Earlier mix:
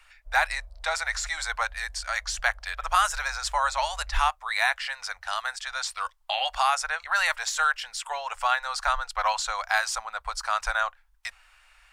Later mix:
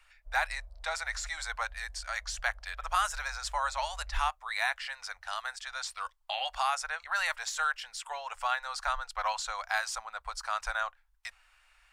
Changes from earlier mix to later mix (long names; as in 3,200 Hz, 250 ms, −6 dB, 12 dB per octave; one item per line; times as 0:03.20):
speech −6.5 dB
background −3.5 dB